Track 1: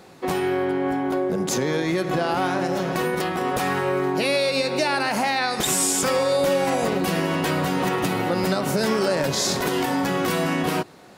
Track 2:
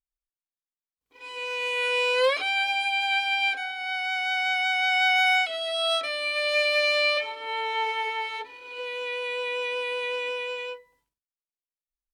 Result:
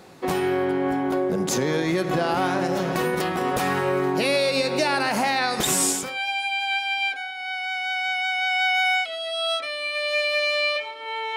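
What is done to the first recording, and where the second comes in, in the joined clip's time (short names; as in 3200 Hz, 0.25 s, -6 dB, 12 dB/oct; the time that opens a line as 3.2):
track 1
6.07 switch to track 2 from 2.48 s, crossfade 0.36 s quadratic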